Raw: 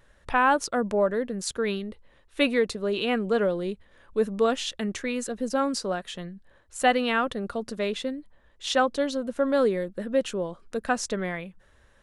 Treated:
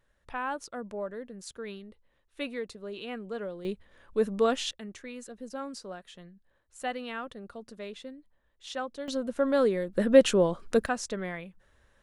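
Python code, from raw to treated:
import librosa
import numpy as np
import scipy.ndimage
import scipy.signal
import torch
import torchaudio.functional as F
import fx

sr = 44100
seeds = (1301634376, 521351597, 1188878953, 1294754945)

y = fx.gain(x, sr, db=fx.steps((0.0, -12.5), (3.65, -2.0), (4.71, -12.5), (9.08, -2.0), (9.93, 6.5), (10.86, -5.0)))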